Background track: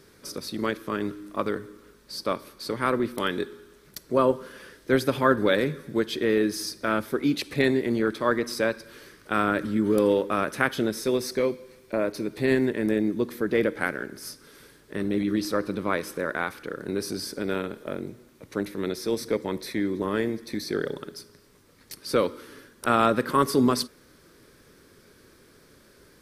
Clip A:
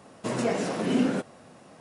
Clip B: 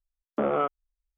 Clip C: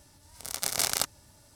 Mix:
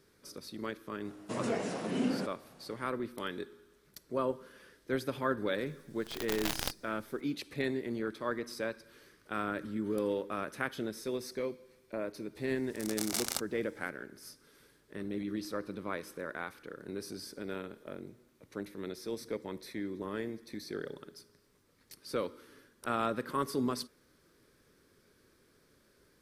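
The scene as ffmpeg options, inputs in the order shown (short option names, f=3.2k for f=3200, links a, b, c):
-filter_complex "[3:a]asplit=2[a][b];[0:a]volume=-11.5dB[c];[a]aeval=exprs='abs(val(0))':c=same[d];[1:a]atrim=end=1.8,asetpts=PTS-STARTPTS,volume=-7.5dB,afade=t=in:d=0.004:c=hsin,afade=t=out:st=1.796:d=0.004:c=hsin,adelay=1050[e];[d]atrim=end=1.55,asetpts=PTS-STARTPTS,volume=-7.5dB,afade=t=in:d=0.004:c=hsin,afade=t=out:st=1.546:d=0.004:c=hsin,adelay=5660[f];[b]atrim=end=1.55,asetpts=PTS-STARTPTS,volume=-7.5dB,afade=t=in:d=0.004:c=hsin,afade=t=out:st=1.546:d=0.004:c=hsin,adelay=12350[g];[c][e][f][g]amix=inputs=4:normalize=0"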